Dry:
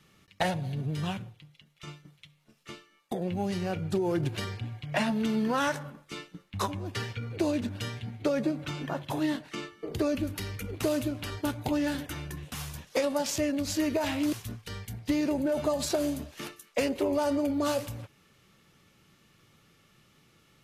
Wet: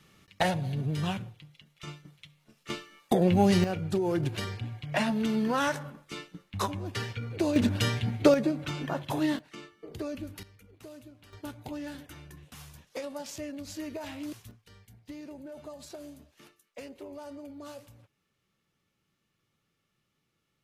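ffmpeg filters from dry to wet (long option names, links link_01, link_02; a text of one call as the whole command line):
ffmpeg -i in.wav -af "asetnsamples=nb_out_samples=441:pad=0,asendcmd='2.7 volume volume 9dB;3.64 volume volume 0dB;7.56 volume volume 8dB;8.34 volume volume 1dB;9.39 volume volume -8dB;10.43 volume volume -19.5dB;11.33 volume volume -10dB;14.51 volume volume -16dB',volume=1.5dB" out.wav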